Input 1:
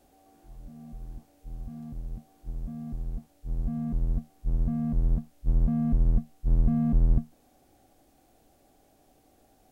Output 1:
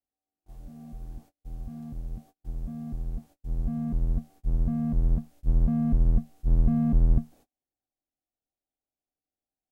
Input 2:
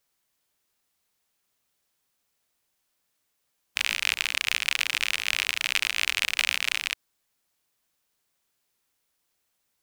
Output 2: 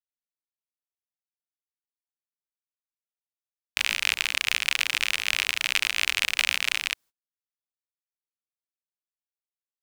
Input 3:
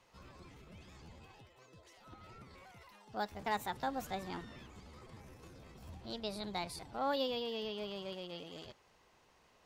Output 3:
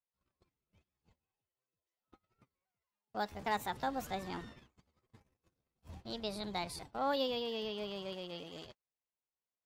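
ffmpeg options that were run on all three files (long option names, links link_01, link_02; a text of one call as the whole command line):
ffmpeg -i in.wav -af "agate=range=-37dB:threshold=-50dB:ratio=16:detection=peak,volume=1dB" out.wav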